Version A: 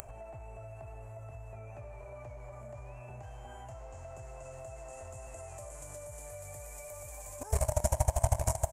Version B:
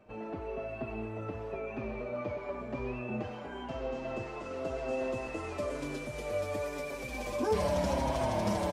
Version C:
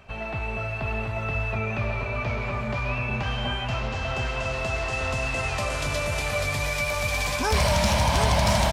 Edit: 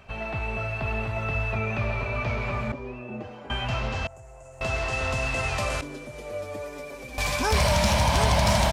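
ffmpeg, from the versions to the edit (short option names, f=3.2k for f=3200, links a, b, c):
-filter_complex "[1:a]asplit=2[a][b];[2:a]asplit=4[c][d][e][f];[c]atrim=end=2.722[g];[a]atrim=start=2.718:end=3.502[h];[d]atrim=start=3.498:end=4.072[i];[0:a]atrim=start=4.068:end=4.612[j];[e]atrim=start=4.608:end=5.812[k];[b]atrim=start=5.808:end=7.182[l];[f]atrim=start=7.178[m];[g][h]acrossfade=d=0.004:c1=hsin:c2=hsin[n];[n][i]acrossfade=d=0.004:c1=hsin:c2=hsin[o];[o][j]acrossfade=d=0.004:c1=hsin:c2=hsin[p];[p][k]acrossfade=d=0.004:c1=hsin:c2=hsin[q];[q][l]acrossfade=d=0.004:c1=hsin:c2=hsin[r];[r][m]acrossfade=d=0.004:c1=hsin:c2=hsin"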